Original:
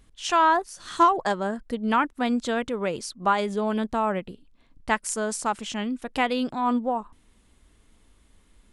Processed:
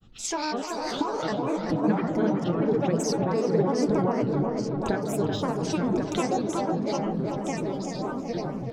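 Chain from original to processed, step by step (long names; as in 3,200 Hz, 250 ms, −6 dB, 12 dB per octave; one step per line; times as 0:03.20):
downward compressor 6 to 1, threshold −35 dBFS, peak gain reduction 19.5 dB
delay with pitch and tempo change per echo 152 ms, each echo −3 semitones, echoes 2, each echo −6 dB
convolution reverb RT60 0.45 s, pre-delay 3 ms, DRR 7.5 dB
granular cloud, grains 20 per second, spray 33 ms, pitch spread up and down by 7 semitones
tape delay 380 ms, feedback 77%, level −4 dB, low-pass 1,600 Hz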